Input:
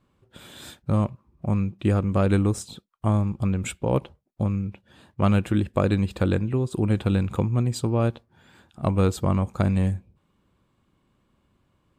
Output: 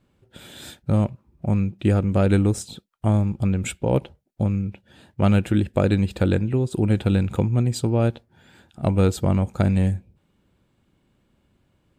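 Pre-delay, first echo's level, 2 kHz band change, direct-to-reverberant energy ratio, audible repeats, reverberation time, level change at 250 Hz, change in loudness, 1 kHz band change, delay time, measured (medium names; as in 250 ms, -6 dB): no reverb, no echo, +2.0 dB, no reverb, no echo, no reverb, +2.5 dB, +2.5 dB, -0.5 dB, no echo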